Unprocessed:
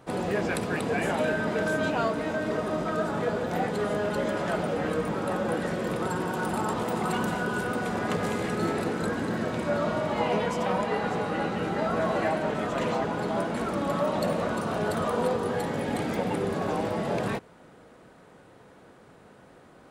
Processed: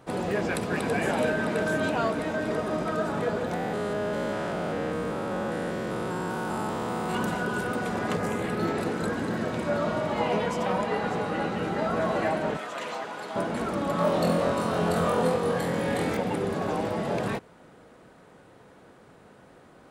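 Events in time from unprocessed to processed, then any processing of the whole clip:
0.38–0.95 echo throw 0.33 s, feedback 80%, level -7.5 dB
3.54–7.15 stepped spectrum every 0.2 s
8.17–8.77 bell 3000 Hz -> 11000 Hz -8.5 dB 0.63 oct
12.57–13.36 HPF 1200 Hz 6 dB/oct
13.96–16.17 flutter echo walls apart 4 m, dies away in 0.43 s

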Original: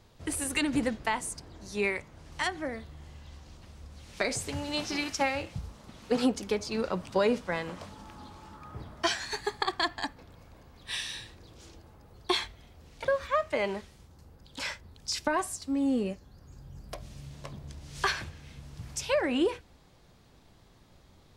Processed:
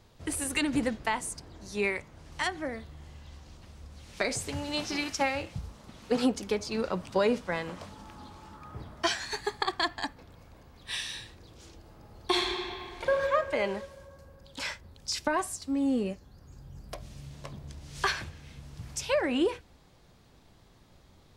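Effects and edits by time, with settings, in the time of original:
11.76–13.13 reverb throw, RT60 2.5 s, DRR -0.5 dB

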